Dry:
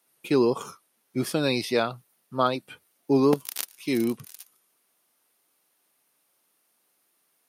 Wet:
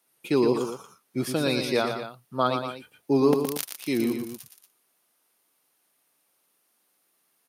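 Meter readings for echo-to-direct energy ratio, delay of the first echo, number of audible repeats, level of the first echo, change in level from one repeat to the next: -5.5 dB, 117 ms, 2, -7.0 dB, -4.5 dB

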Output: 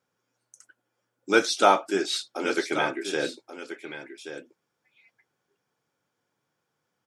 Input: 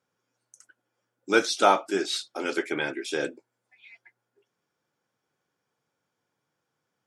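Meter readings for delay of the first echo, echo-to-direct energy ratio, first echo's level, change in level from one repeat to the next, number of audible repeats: 1131 ms, -11.0 dB, -11.0 dB, no regular repeats, 1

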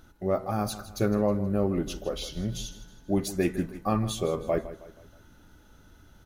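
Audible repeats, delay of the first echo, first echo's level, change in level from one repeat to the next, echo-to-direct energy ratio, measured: 3, 159 ms, -15.0 dB, -7.5 dB, -14.0 dB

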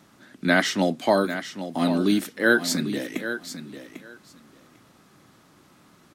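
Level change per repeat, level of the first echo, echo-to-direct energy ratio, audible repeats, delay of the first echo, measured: -16.0 dB, -11.0 dB, -11.0 dB, 2, 797 ms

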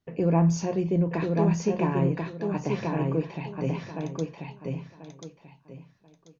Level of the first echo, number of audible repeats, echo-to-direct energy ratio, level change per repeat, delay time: -3.5 dB, 3, -3.0 dB, -12.5 dB, 1037 ms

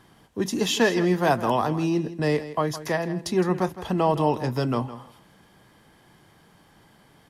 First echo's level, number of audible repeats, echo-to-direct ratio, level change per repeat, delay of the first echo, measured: -14.0 dB, 2, -14.0 dB, -16.0 dB, 162 ms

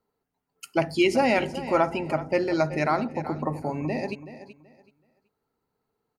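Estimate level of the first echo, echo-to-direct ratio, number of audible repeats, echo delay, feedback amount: -14.0 dB, -13.5 dB, 2, 378 ms, 23%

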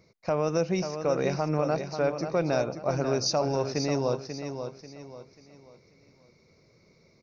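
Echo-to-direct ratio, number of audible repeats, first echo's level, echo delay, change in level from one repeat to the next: -7.5 dB, 3, -8.0 dB, 539 ms, -9.0 dB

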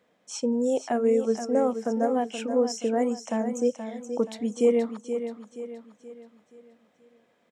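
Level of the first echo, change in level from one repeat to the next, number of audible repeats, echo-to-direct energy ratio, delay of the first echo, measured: -9.0 dB, -7.5 dB, 4, -8.0 dB, 476 ms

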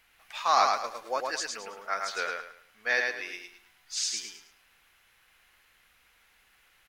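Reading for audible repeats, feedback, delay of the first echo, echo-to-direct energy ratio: 4, 30%, 108 ms, -3.0 dB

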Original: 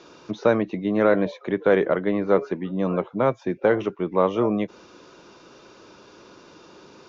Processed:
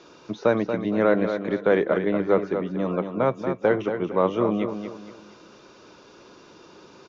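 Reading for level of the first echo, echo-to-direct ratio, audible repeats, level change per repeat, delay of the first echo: -8.0 dB, -7.5 dB, 3, -9.0 dB, 233 ms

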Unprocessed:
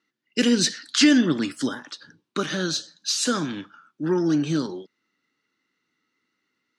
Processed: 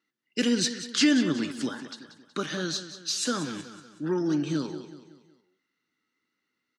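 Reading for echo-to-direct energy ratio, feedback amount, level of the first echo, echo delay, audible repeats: -11.5 dB, 45%, -12.5 dB, 186 ms, 4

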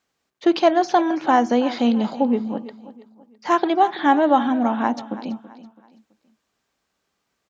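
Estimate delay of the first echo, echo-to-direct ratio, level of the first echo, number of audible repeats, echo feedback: 330 ms, -15.5 dB, -16.0 dB, 3, 37%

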